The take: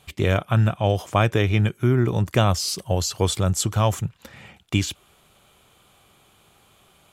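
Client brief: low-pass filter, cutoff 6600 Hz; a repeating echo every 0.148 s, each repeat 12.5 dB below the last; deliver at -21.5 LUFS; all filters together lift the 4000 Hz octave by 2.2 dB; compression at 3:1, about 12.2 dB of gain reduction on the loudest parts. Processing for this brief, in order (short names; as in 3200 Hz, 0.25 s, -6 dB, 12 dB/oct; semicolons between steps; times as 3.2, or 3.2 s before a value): LPF 6600 Hz; bell 4000 Hz +3.5 dB; compressor 3:1, threshold -31 dBFS; feedback echo 0.148 s, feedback 24%, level -12.5 dB; gain +11.5 dB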